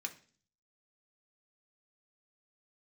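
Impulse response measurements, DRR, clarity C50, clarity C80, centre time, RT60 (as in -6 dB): 2.5 dB, 14.5 dB, 19.5 dB, 7 ms, 0.45 s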